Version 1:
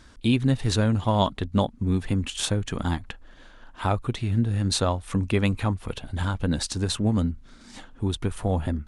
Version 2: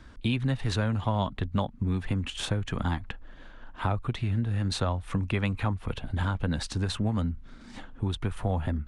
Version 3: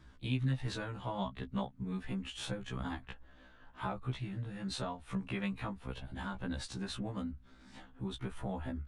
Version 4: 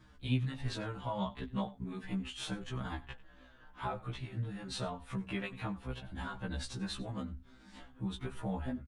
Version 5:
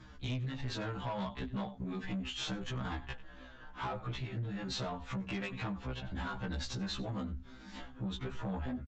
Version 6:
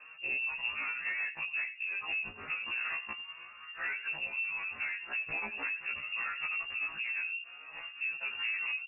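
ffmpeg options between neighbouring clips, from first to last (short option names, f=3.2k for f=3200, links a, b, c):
-filter_complex "[0:a]bass=f=250:g=3,treble=f=4k:g=-10,acrossover=split=230|590[a][b][c];[a]acompressor=threshold=-27dB:ratio=4[d];[b]acompressor=threshold=-39dB:ratio=4[e];[c]acompressor=threshold=-29dB:ratio=4[f];[d][e][f]amix=inputs=3:normalize=0"
-af "afftfilt=real='re*1.73*eq(mod(b,3),0)':imag='im*1.73*eq(mod(b,3),0)':win_size=2048:overlap=0.75,volume=-6dB"
-filter_complex "[0:a]asplit=2[a][b];[b]adelay=93.29,volume=-19dB,highshelf=f=4k:g=-2.1[c];[a][c]amix=inputs=2:normalize=0,asplit=2[d][e];[e]adelay=5.9,afreqshift=-2.5[f];[d][f]amix=inputs=2:normalize=1,volume=3.5dB"
-af "acompressor=threshold=-40dB:ratio=2,aresample=16000,asoftclip=type=tanh:threshold=-38.5dB,aresample=44100,volume=6.5dB"
-af "lowpass=f=2.4k:t=q:w=0.5098,lowpass=f=2.4k:t=q:w=0.6013,lowpass=f=2.4k:t=q:w=0.9,lowpass=f=2.4k:t=q:w=2.563,afreqshift=-2800,volume=2dB"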